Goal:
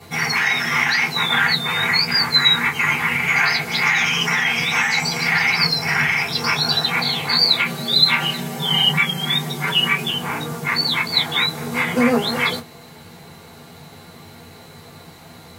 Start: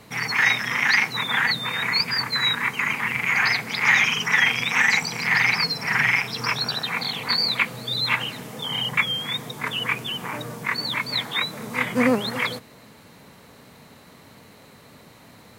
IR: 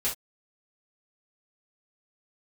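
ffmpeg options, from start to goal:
-filter_complex "[0:a]asettb=1/sr,asplit=3[link_01][link_02][link_03];[link_01]atrim=end=7.644[link_04];[link_02]atrim=start=7.64:end=10.09,asetpts=PTS-STARTPTS,afade=type=in:duration=0.004:curve=qsin,afade=type=out:start_time=2.446:duration=0.004:curve=qsin,aecho=1:1:5.2:0.79,atrim=end_sample=108045[link_05];[link_03]atrim=start=10.086[link_06];[link_04][link_05]acrossfade=duration=0.004:curve1=hsin:curve2=qsin[link_07];[link_07][link_06]acrossfade=duration=0.004:curve1=qsin:curve2=hsin,alimiter=limit=-12.5dB:level=0:latency=1:release=70[link_08];[1:a]atrim=start_sample=2205,asetrate=74970,aresample=44100[link_09];[link_08][link_09]afir=irnorm=-1:irlink=0,volume=4.5dB"

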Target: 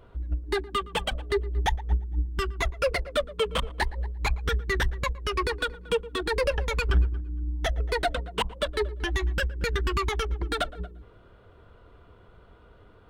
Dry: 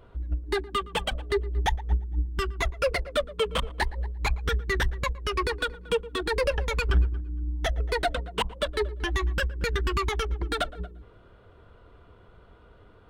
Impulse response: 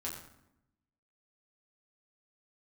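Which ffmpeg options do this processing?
-filter_complex "[0:a]asettb=1/sr,asplit=3[link_01][link_02][link_03];[link_01]atrim=end=9.044[link_04];[link_02]atrim=start=9.04:end=9.68,asetpts=PTS-STARTPTS,afade=type=in:duration=0.004:curve=qsin,afade=type=out:start_time=0.636:duration=0.004:curve=qsin,bandreject=frequency=1100:width=7.7[link_05];[link_03]atrim=start=9.676[link_06];[link_04][link_05]acrossfade=duration=0.004:curve1=hsin:curve2=qsin[link_07];[link_07][link_06]acrossfade=duration=0.004:curve1=qsin:curve2=hsin"

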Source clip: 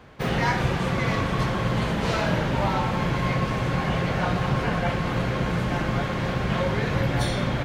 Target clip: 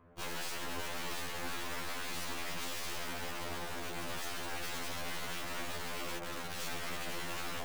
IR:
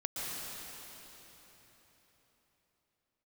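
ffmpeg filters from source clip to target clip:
-filter_complex "[0:a]lowpass=1300,afwtdn=0.0708,asettb=1/sr,asplit=3[link_01][link_02][link_03];[link_01]atrim=end=6.184[link_04];[link_02]atrim=start=6.18:end=6.7,asetpts=PTS-STARTPTS,afade=type=in:duration=0.004:curve=qsin,afade=type=out:start_time=0.516:duration=0.004:curve=qsin,highpass=900[link_05];[link_03]atrim=start=6.696[link_06];[link_04][link_05]acrossfade=duration=0.004:curve1=hsin:curve2=qsin[link_07];[link_07][link_06]acrossfade=duration=0.004:curve1=qsin:curve2=hsin,alimiter=limit=-23dB:level=0:latency=1:release=321,acompressor=threshold=-32dB:ratio=6,asplit=3[link_08][link_09][link_10];[link_08]afade=type=out:start_time=3.3:duration=0.02[link_11];[link_09]aeval=exprs='val(0)*sin(2*PI*57*n/s)':channel_layout=same,afade=type=in:start_time=3.3:duration=0.02,afade=type=out:start_time=4.16:duration=0.02[link_12];[link_10]afade=type=in:start_time=4.16:duration=0.02[link_13];[link_11][link_12][link_13]amix=inputs=3:normalize=0,aeval=exprs='(mod(126*val(0)+1,2)-1)/126':channel_layout=same,aeval=exprs='0.0596*(cos(1*acos(clip(val(0)/0.0596,-1,1)))-cos(1*PI/2))+0.015*(cos(8*acos(clip(val(0)/0.0596,-1,1)))-cos(8*PI/2))':channel_layout=same,afftfilt=real='re*2*eq(mod(b,4),0)':imag='im*2*eq(mod(b,4),0)':win_size=2048:overlap=0.75,volume=7dB"

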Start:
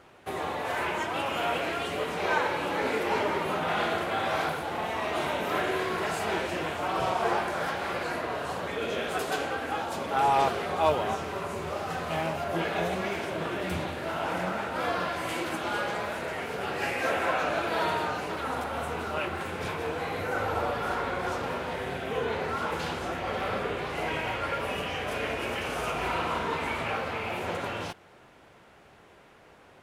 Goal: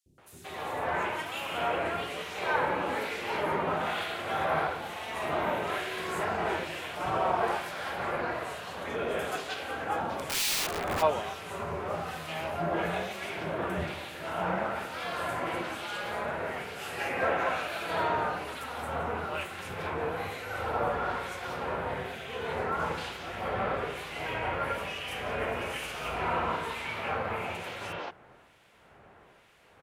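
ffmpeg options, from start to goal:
ffmpeg -i in.wav -filter_complex "[0:a]acrossover=split=290|5500[link_01][link_02][link_03];[link_01]adelay=60[link_04];[link_02]adelay=180[link_05];[link_04][link_05][link_03]amix=inputs=3:normalize=0,asplit=3[link_06][link_07][link_08];[link_06]afade=type=out:start_time=10.13:duration=0.02[link_09];[link_07]aeval=exprs='(mod(15.8*val(0)+1,2)-1)/15.8':channel_layout=same,afade=type=in:start_time=10.13:duration=0.02,afade=type=out:start_time=11.01:duration=0.02[link_10];[link_08]afade=type=in:start_time=11.01:duration=0.02[link_11];[link_09][link_10][link_11]amix=inputs=3:normalize=0,acrossover=split=2100[link_12][link_13];[link_12]aeval=exprs='val(0)*(1-0.7/2+0.7/2*cos(2*PI*1.1*n/s))':channel_layout=same[link_14];[link_13]aeval=exprs='val(0)*(1-0.7/2-0.7/2*cos(2*PI*1.1*n/s))':channel_layout=same[link_15];[link_14][link_15]amix=inputs=2:normalize=0,volume=1.5dB" out.wav

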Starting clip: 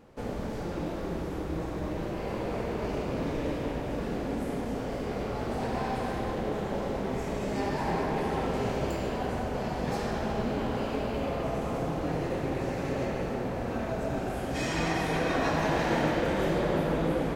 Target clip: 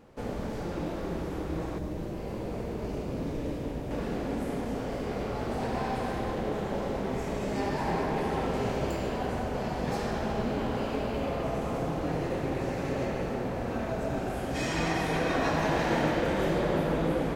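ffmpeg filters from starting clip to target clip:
ffmpeg -i in.wav -filter_complex "[0:a]asettb=1/sr,asplit=3[link_01][link_02][link_03];[link_01]atrim=end=1.784[link_04];[link_02]atrim=start=1.78:end=3.91,asetpts=PTS-STARTPTS,afade=type=in:duration=0.004:curve=qsin,afade=type=out:start_time=2.126:duration=0.004:curve=qsin,equalizer=frequency=1600:width=0.35:gain=-7.5[link_05];[link_03]atrim=start=3.906[link_06];[link_04][link_05]acrossfade=duration=0.004:curve1=hsin:curve2=qsin[link_07];[link_07][link_06]acrossfade=duration=0.004:curve1=qsin:curve2=hsin" out.wav

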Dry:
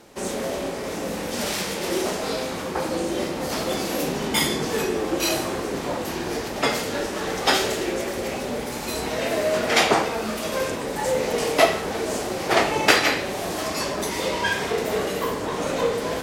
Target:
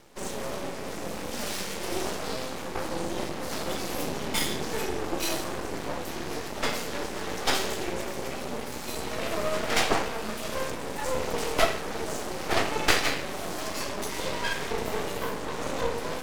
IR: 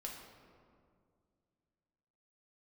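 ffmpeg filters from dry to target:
-af "aeval=exprs='max(val(0),0)':channel_layout=same,volume=-2dB"

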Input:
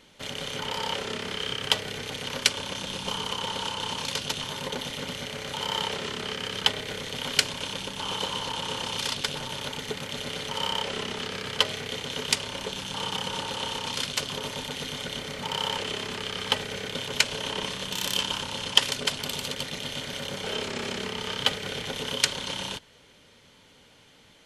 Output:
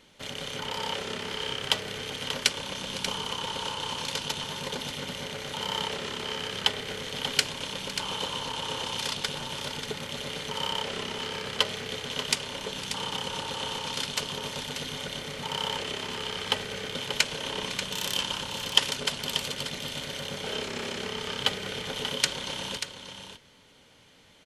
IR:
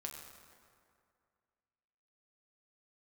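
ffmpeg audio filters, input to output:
-af "aecho=1:1:507|586:0.141|0.355,volume=-2dB"

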